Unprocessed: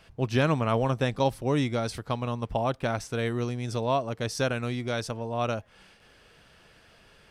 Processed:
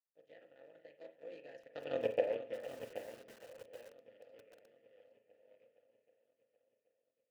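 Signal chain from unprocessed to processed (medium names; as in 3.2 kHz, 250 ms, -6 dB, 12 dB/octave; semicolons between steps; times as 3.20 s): cycle switcher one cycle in 3, muted; Doppler pass-by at 2.02 s, 57 m/s, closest 4.8 m; high-pass 110 Hz 12 dB/octave; band-stop 1.6 kHz, Q 16; comb of notches 190 Hz; power-law waveshaper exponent 1.4; vowel filter e; shuffle delay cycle 779 ms, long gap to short 1.5:1, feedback 48%, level -15 dB; on a send at -8 dB: reverberation, pre-delay 34 ms; on the sum: bit-crushed delay 778 ms, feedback 35%, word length 11-bit, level -9 dB; trim +15.5 dB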